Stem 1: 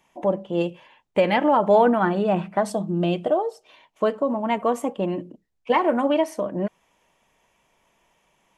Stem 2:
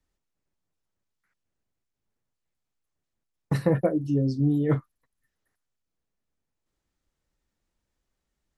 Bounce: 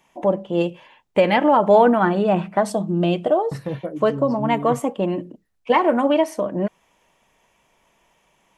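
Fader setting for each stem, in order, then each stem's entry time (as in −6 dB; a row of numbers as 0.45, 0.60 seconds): +3.0, −5.5 decibels; 0.00, 0.00 seconds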